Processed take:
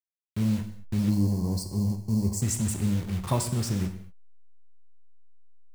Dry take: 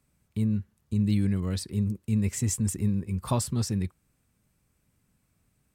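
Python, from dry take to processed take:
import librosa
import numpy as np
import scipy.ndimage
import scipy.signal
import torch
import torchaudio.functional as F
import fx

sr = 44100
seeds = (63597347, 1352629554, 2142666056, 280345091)

y = fx.delta_hold(x, sr, step_db=-35.5)
y = fx.spec_box(y, sr, start_s=1.1, length_s=1.32, low_hz=1100.0, high_hz=4100.0, gain_db=-20)
y = fx.rev_gated(y, sr, seeds[0], gate_ms=260, shape='falling', drr_db=6.0)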